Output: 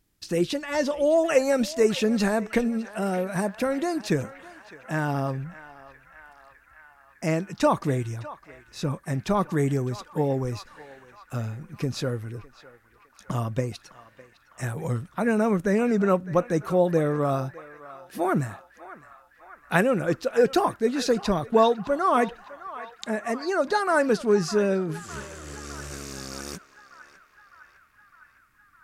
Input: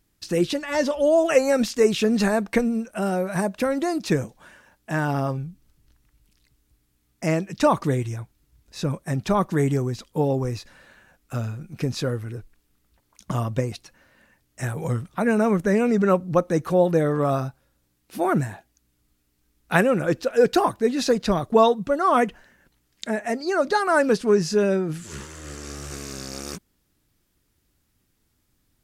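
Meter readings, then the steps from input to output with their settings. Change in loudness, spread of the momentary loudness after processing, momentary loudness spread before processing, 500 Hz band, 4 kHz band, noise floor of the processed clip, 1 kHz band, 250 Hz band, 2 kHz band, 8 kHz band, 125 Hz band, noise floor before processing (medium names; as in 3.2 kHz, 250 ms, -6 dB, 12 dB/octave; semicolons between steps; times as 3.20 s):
-2.5 dB, 17 LU, 15 LU, -2.5 dB, -2.5 dB, -59 dBFS, -2.5 dB, -2.5 dB, -2.0 dB, -2.5 dB, -2.5 dB, -70 dBFS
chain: band-passed feedback delay 607 ms, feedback 77%, band-pass 1.6 kHz, level -14 dB; trim -2.5 dB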